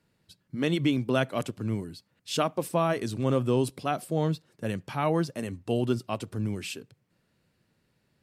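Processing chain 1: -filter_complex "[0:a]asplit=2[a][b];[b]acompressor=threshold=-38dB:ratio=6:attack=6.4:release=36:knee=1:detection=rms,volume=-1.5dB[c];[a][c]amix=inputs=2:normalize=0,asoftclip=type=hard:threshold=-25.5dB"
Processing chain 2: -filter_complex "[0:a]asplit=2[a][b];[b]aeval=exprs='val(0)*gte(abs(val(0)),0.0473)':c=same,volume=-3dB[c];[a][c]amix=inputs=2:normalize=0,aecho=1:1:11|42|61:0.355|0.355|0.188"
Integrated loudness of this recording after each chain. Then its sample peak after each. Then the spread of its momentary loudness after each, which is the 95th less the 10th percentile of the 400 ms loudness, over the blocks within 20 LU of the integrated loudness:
-31.5, -24.0 LUFS; -25.5, -6.0 dBFS; 5, 11 LU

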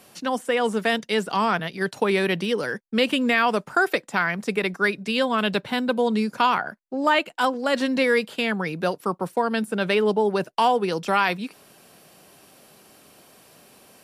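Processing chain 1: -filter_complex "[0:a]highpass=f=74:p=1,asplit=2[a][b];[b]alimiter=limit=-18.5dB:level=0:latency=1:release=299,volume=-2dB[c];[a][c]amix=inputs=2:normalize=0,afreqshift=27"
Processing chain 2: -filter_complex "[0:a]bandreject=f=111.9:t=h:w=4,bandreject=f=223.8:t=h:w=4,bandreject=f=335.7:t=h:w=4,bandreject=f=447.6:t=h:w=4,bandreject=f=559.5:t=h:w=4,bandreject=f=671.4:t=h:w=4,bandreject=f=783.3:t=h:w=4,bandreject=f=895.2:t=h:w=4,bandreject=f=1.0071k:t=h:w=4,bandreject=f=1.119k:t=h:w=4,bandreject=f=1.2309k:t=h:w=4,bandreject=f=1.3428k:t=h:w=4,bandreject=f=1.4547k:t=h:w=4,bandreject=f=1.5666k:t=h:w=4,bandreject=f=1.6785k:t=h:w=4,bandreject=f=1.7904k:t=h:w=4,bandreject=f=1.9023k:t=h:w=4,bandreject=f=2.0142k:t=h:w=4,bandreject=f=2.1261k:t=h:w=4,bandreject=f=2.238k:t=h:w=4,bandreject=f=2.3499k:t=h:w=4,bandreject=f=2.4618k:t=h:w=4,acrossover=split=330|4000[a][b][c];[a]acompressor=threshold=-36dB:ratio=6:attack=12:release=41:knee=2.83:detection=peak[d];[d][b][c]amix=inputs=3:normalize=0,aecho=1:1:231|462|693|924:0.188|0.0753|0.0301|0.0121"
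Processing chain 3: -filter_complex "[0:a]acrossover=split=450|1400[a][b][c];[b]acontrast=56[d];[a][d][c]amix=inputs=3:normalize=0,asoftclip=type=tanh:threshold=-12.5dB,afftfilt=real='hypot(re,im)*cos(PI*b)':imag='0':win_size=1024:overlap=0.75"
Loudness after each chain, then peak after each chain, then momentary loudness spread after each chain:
-20.5, -24.0, -26.5 LUFS; -5.5, -7.5, -5.5 dBFS; 5, 6, 5 LU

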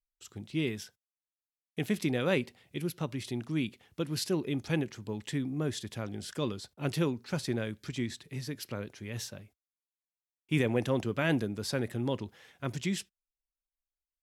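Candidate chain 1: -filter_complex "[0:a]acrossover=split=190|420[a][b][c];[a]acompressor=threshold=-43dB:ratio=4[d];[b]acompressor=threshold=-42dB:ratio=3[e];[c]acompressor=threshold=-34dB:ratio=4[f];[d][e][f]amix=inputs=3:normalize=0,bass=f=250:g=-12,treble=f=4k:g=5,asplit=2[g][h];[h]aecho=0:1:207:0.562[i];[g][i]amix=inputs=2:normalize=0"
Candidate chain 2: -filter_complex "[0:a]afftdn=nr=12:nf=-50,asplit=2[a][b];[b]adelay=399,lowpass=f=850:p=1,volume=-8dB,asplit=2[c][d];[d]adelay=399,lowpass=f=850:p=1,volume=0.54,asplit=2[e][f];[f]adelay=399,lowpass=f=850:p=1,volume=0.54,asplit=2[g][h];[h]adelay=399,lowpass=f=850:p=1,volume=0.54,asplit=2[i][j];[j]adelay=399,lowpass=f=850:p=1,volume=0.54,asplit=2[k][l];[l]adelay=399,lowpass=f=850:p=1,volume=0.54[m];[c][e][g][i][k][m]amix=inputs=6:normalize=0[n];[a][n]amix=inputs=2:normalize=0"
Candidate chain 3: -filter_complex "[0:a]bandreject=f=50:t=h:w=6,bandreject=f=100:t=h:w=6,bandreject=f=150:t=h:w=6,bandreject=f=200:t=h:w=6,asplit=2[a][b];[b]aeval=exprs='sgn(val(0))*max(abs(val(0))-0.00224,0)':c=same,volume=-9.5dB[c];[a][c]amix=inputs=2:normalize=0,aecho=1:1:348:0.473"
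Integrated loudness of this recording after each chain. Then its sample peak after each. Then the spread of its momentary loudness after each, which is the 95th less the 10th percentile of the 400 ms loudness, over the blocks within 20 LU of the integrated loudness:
-38.0, -33.5, -31.5 LUFS; -20.5, -14.5, -10.5 dBFS; 8, 16, 11 LU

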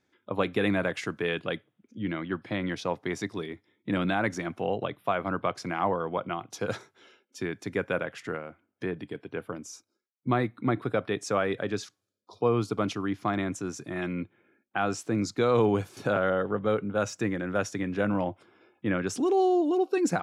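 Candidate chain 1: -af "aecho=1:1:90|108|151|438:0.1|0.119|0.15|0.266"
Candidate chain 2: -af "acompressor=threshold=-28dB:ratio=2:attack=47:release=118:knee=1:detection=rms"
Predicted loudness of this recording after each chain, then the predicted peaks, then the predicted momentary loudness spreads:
-29.5, -31.5 LUFS; -13.0, -14.0 dBFS; 13, 9 LU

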